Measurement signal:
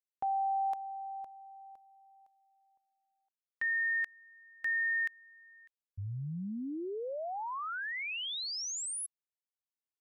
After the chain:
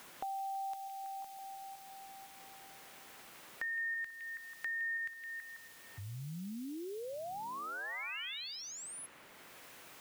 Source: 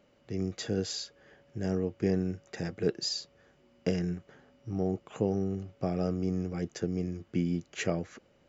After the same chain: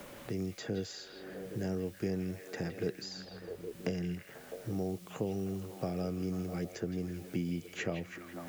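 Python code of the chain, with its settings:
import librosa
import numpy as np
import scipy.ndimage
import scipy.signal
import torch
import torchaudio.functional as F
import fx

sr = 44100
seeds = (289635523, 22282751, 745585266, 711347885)

y = fx.dmg_noise_colour(x, sr, seeds[0], colour='white', level_db=-61.0)
y = fx.echo_stepped(y, sr, ms=163, hz=2800.0, octaves=-0.7, feedback_pct=70, wet_db=-4.5)
y = fx.band_squash(y, sr, depth_pct=70)
y = y * librosa.db_to_amplitude(-5.0)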